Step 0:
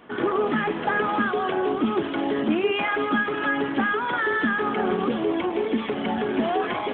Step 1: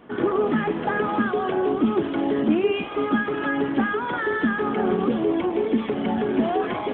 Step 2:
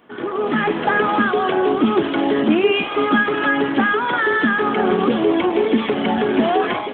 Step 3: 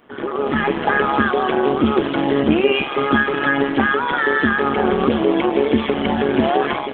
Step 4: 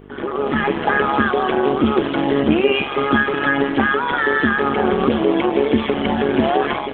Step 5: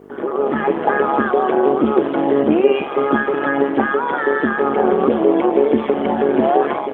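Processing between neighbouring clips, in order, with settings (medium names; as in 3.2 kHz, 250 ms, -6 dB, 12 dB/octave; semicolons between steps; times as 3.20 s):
tilt shelf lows +4 dB, about 690 Hz; spectral replace 2.75–2.99 s, 500–2300 Hz both
tilt EQ +2 dB/octave; level rider gain up to 11.5 dB; trim -2 dB
AM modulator 140 Hz, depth 50%; trim +3 dB
mains buzz 50 Hz, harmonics 9, -42 dBFS 0 dB/octave
band-pass filter 530 Hz, Q 0.81; word length cut 12-bit, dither none; trim +4 dB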